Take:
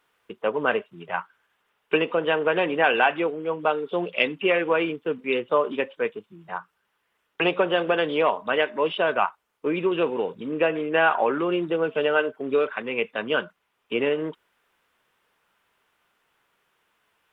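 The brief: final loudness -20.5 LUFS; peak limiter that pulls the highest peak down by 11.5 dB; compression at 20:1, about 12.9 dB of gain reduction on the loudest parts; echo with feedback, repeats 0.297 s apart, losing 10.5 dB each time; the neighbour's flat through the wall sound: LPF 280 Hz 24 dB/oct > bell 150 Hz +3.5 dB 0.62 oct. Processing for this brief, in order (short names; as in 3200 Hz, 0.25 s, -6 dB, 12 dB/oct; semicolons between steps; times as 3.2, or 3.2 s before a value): compressor 20:1, threshold -28 dBFS; limiter -25.5 dBFS; LPF 280 Hz 24 dB/oct; bell 150 Hz +3.5 dB 0.62 oct; feedback echo 0.297 s, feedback 30%, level -10.5 dB; gain +25 dB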